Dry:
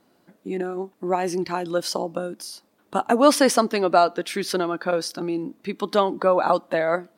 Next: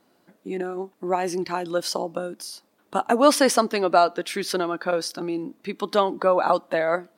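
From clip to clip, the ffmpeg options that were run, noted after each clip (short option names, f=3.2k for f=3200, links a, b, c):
-af "lowshelf=f=240:g=-4.5"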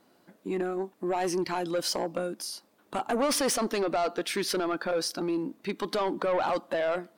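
-af "alimiter=limit=-14.5dB:level=0:latency=1:release=21,asoftclip=type=tanh:threshold=-21.5dB"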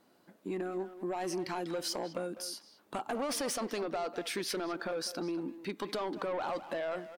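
-filter_complex "[0:a]acompressor=threshold=-29dB:ratio=6,asplit=2[a][b];[b]adelay=200,highpass=300,lowpass=3.4k,asoftclip=type=hard:threshold=-31.5dB,volume=-10dB[c];[a][c]amix=inputs=2:normalize=0,volume=-3.5dB"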